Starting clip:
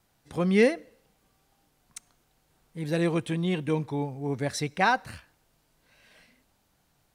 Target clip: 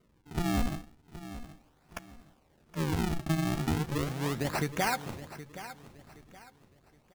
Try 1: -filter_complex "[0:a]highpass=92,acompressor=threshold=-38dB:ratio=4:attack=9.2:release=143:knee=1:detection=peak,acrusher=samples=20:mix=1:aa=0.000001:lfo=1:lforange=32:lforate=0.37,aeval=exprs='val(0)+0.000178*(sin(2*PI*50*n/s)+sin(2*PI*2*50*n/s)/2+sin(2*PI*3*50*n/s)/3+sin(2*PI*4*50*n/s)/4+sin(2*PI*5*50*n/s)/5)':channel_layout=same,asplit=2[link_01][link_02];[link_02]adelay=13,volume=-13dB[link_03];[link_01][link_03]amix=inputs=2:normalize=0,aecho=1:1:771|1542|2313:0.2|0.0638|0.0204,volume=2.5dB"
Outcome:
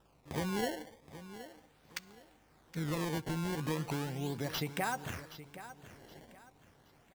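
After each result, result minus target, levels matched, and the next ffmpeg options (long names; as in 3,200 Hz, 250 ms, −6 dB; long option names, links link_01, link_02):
sample-and-hold swept by an LFO: distortion −11 dB; downward compressor: peak gain reduction +5.5 dB
-filter_complex "[0:a]highpass=92,acompressor=threshold=-38dB:ratio=4:attack=9.2:release=143:knee=1:detection=peak,acrusher=samples=51:mix=1:aa=0.000001:lfo=1:lforange=81.6:lforate=0.37,aeval=exprs='val(0)+0.000178*(sin(2*PI*50*n/s)+sin(2*PI*2*50*n/s)/2+sin(2*PI*3*50*n/s)/3+sin(2*PI*4*50*n/s)/4+sin(2*PI*5*50*n/s)/5)':channel_layout=same,asplit=2[link_01][link_02];[link_02]adelay=13,volume=-13dB[link_03];[link_01][link_03]amix=inputs=2:normalize=0,aecho=1:1:771|1542|2313:0.2|0.0638|0.0204,volume=2.5dB"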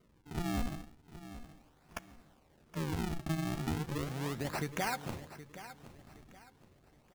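downward compressor: peak gain reduction +5.5 dB
-filter_complex "[0:a]highpass=92,acompressor=threshold=-30.5dB:ratio=4:attack=9.2:release=143:knee=1:detection=peak,acrusher=samples=51:mix=1:aa=0.000001:lfo=1:lforange=81.6:lforate=0.37,aeval=exprs='val(0)+0.000178*(sin(2*PI*50*n/s)+sin(2*PI*2*50*n/s)/2+sin(2*PI*3*50*n/s)/3+sin(2*PI*4*50*n/s)/4+sin(2*PI*5*50*n/s)/5)':channel_layout=same,asplit=2[link_01][link_02];[link_02]adelay=13,volume=-13dB[link_03];[link_01][link_03]amix=inputs=2:normalize=0,aecho=1:1:771|1542|2313:0.2|0.0638|0.0204,volume=2.5dB"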